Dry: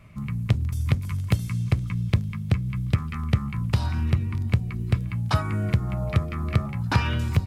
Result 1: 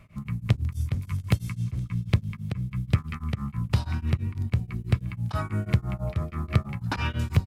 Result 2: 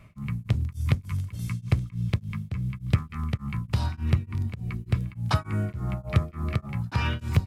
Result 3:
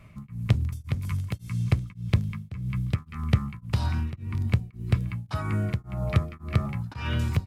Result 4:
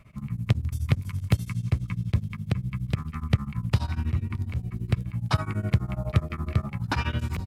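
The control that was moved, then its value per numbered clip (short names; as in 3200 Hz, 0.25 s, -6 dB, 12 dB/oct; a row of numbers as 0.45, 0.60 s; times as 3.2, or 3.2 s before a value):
beating tremolo, nulls at: 6.1, 3.4, 1.8, 12 Hz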